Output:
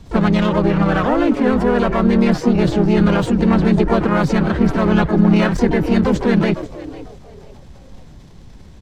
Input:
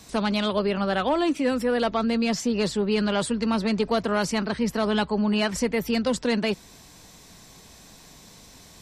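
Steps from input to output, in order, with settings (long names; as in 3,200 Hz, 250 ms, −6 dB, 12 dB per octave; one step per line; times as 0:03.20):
pitch-shifted copies added −3 semitones −2 dB, +7 semitones −10 dB, +12 semitones −11 dB
RIAA equalisation playback
on a send: echo with shifted repeats 498 ms, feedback 32%, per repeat +110 Hz, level −15.5 dB
on the sum: dynamic equaliser 1,600 Hz, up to +6 dB, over −39 dBFS, Q 1.1
in parallel at −5.5 dB: dead-zone distortion −29.5 dBFS
on the sum: transient designer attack +1 dB, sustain +5 dB
level −3.5 dB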